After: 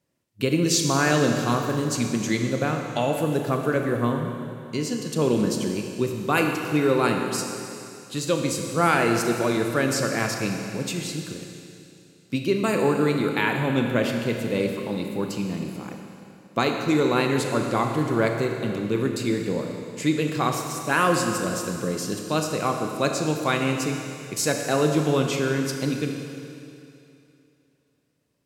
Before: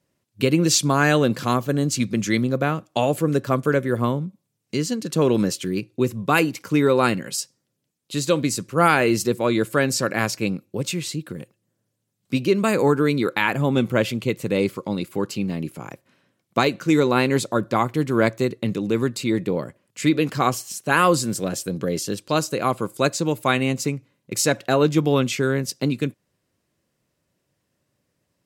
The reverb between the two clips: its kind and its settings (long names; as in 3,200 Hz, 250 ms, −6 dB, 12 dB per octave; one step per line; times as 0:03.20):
four-comb reverb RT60 2.7 s, combs from 26 ms, DRR 3 dB
level −4 dB